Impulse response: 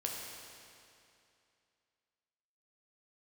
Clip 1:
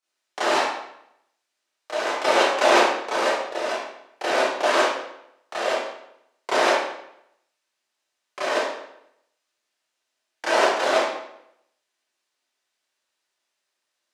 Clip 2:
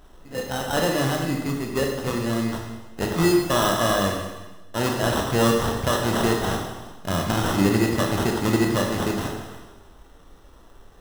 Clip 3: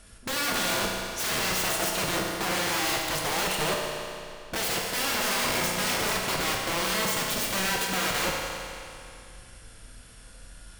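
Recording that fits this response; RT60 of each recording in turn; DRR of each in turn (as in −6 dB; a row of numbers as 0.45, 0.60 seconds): 3; 0.75, 1.1, 2.6 seconds; −12.0, 1.0, −2.0 decibels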